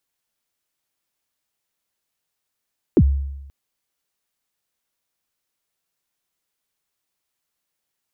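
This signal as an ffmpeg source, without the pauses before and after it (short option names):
-f lavfi -i "aevalsrc='0.422*pow(10,-3*t/0.99)*sin(2*PI*(430*0.057/log(69/430)*(exp(log(69/430)*min(t,0.057)/0.057)-1)+69*max(t-0.057,0)))':d=0.53:s=44100"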